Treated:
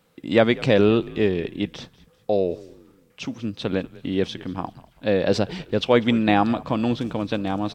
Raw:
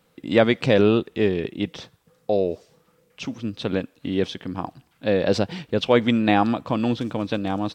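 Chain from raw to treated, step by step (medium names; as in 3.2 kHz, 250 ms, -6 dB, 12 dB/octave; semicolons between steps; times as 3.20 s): frequency-shifting echo 195 ms, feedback 37%, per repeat -68 Hz, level -20.5 dB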